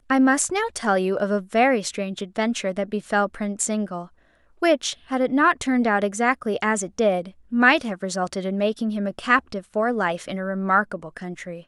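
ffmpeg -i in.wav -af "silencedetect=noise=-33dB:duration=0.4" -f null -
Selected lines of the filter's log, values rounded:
silence_start: 4.05
silence_end: 4.62 | silence_duration: 0.57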